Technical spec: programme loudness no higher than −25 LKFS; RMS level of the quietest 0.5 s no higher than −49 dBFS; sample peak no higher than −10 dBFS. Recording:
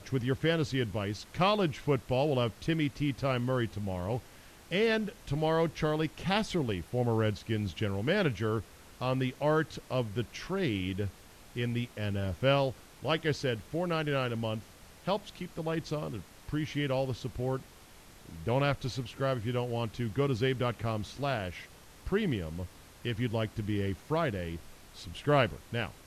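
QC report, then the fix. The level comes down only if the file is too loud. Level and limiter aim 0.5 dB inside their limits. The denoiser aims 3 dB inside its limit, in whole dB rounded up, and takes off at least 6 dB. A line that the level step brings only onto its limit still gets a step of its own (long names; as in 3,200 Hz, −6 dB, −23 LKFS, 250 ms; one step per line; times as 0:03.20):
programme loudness −32.0 LKFS: in spec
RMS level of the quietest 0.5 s −54 dBFS: in spec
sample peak −12.0 dBFS: in spec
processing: no processing needed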